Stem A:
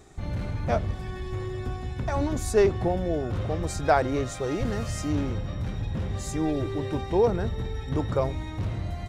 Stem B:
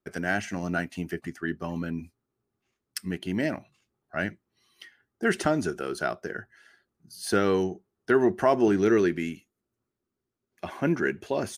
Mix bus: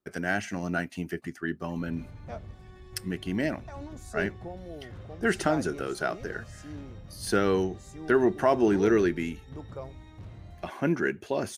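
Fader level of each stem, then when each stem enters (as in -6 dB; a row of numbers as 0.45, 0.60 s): -14.5, -1.0 dB; 1.60, 0.00 s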